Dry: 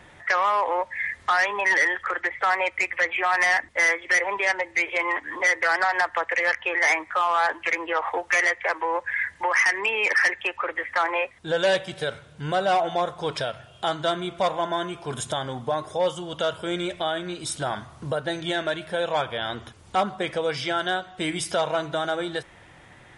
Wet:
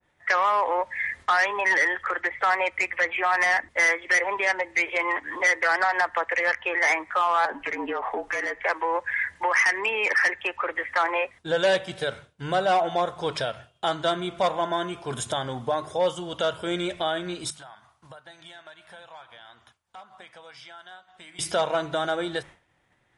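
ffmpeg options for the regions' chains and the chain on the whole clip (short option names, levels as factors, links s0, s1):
-filter_complex "[0:a]asettb=1/sr,asplit=3[s0][s1][s2];[s0]atrim=end=7.454[s3];[s1]atrim=start=7.45:end=8.63,asetpts=PTS-STARTPTS,afade=t=in:d=0.004:c=qsin,afade=t=out:st=1.176:d=0.004:c=qsin,tiltshelf=f=1400:g=4.5,acompressor=threshold=0.0562:ratio=5:attack=3.2:release=140:knee=1:detection=peak,afreqshift=-45[s4];[s2]atrim=start=8.626[s5];[s3][s4]acrossfade=d=0.004:c1=hsin:c2=qsin[s6];[s6][s5]acrossfade=d=0.004:c1=qsin:c2=hsin,asettb=1/sr,asplit=3[s7][s8][s9];[s7]atrim=end=17.504[s10];[s8]atrim=start=17.5:end=21.39,asetpts=PTS-STARTPTS,afade=t=in:d=0.004:c=qsin,afade=t=out:st=3.886:d=0.004:c=qsin,lowshelf=f=610:t=q:w=1.5:g=-9,acompressor=threshold=0.0112:ratio=8:attack=3.2:release=140:knee=1:detection=peak,aecho=1:1:962:0.112,atrim=end_sample=171549[s11];[s9]atrim=start=21.386[s12];[s10][s11]acrossfade=d=0.004:c1=hsin:c2=qsin[s13];[s13][s12]acrossfade=d=0.004:c1=qsin:c2=hsin,bandreject=f=50:t=h:w=6,bandreject=f=100:t=h:w=6,bandreject=f=150:t=h:w=6,bandreject=f=200:t=h:w=6,agate=range=0.0224:threshold=0.0126:ratio=3:detection=peak,adynamicequalizer=threshold=0.0316:dfrequency=2100:dqfactor=0.7:tfrequency=2100:tqfactor=0.7:attack=5:release=100:ratio=0.375:range=2:mode=cutabove:tftype=highshelf"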